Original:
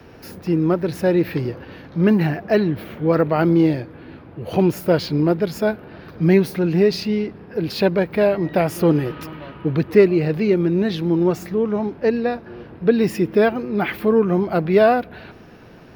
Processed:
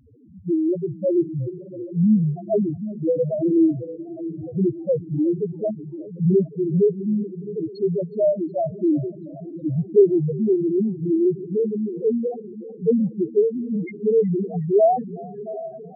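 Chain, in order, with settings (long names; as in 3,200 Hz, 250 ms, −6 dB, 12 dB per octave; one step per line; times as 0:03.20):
feedback delay with all-pass diffusion 741 ms, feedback 44%, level −12 dB
spectral peaks only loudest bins 1
feedback echo with a swinging delay time 370 ms, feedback 57%, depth 100 cents, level −22.5 dB
level +4 dB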